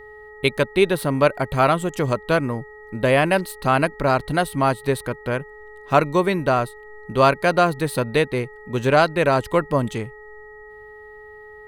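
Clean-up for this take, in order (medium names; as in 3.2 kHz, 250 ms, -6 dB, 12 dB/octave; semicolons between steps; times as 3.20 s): de-hum 424 Hz, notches 3; band-stop 1.9 kHz, Q 30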